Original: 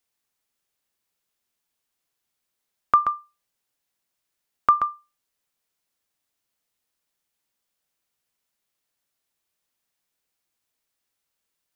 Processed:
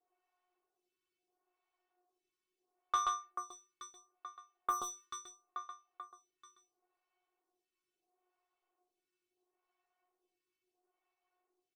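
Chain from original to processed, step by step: median filter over 25 samples; metallic resonator 360 Hz, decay 0.21 s, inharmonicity 0.002; feedback echo 0.437 s, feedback 50%, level -18 dB; overdrive pedal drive 25 dB, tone 2200 Hz, clips at -30 dBFS; comb 2.4 ms, depth 31%; photocell phaser 0.74 Hz; gain +8 dB

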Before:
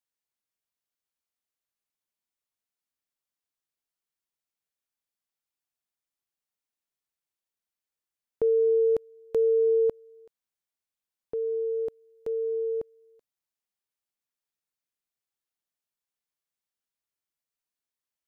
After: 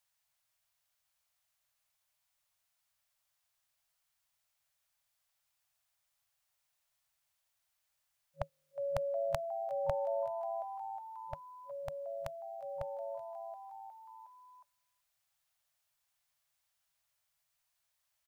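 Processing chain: frequency-shifting echo 0.362 s, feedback 62%, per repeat +110 Hz, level -23 dB; FFT band-reject 160–550 Hz; gain +9.5 dB

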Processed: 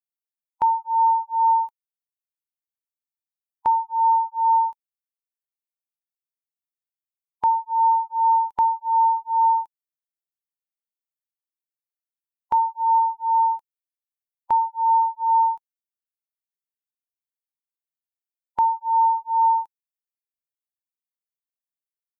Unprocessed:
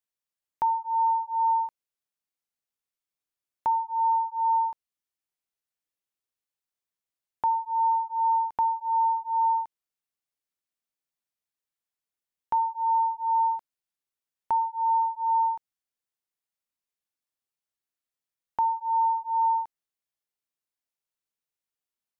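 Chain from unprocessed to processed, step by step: per-bin expansion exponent 2; 12.99–13.5 low shelf 420 Hz -6.5 dB; in parallel at +1 dB: limiter -31 dBFS, peak gain reduction 12 dB; on the sum: gain +4 dB

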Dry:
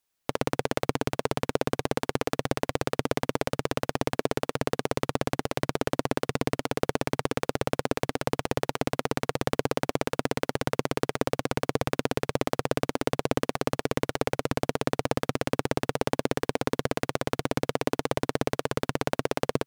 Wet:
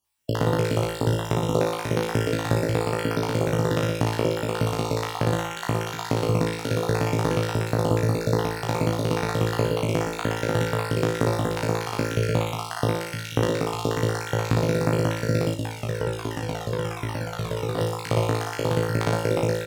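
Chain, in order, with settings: random spectral dropouts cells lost 44%; bell 110 Hz +10 dB 1.3 oct; doubler 34 ms -9 dB; flutter echo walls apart 3.1 m, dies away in 0.72 s; 15.54–17.78 cascading flanger falling 1.3 Hz

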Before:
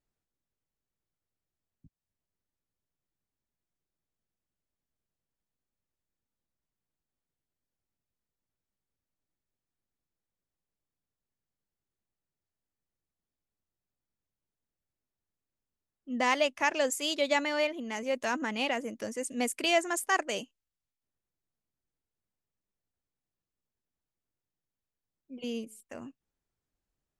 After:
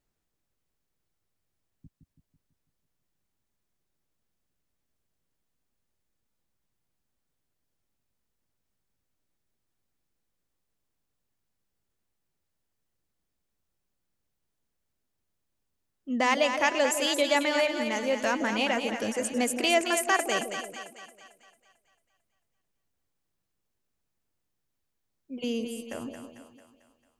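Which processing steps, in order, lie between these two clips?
in parallel at 0 dB: compressor, threshold -34 dBFS, peak gain reduction 13 dB; on the sum: split-band echo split 680 Hz, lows 0.165 s, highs 0.223 s, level -7 dB

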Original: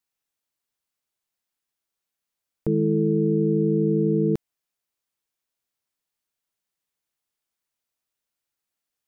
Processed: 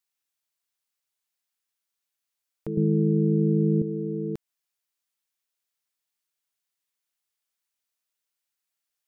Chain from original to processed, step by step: 2.77–3.82 tilt -4 dB/oct; mismatched tape noise reduction encoder only; gain -9 dB

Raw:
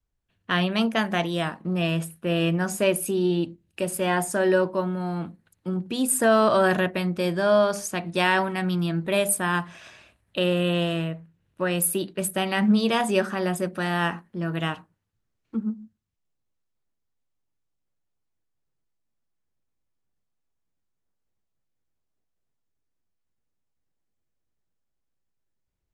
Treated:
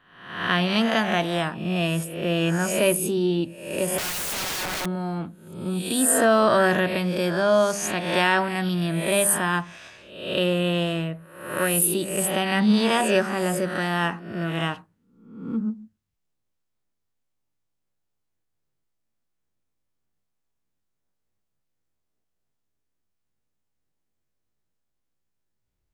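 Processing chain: spectral swells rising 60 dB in 0.73 s; 3.98–4.86 wrapped overs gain 24 dB

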